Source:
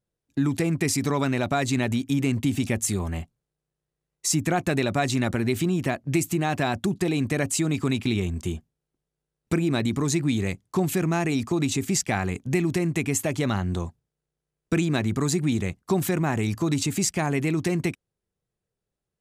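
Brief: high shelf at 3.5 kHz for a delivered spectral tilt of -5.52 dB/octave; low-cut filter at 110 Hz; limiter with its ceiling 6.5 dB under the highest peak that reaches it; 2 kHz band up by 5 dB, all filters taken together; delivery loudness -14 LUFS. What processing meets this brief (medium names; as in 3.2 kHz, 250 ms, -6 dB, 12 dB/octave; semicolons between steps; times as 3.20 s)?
high-pass 110 Hz; peaking EQ 2 kHz +8.5 dB; treble shelf 3.5 kHz -8 dB; trim +12.5 dB; peak limiter -1.5 dBFS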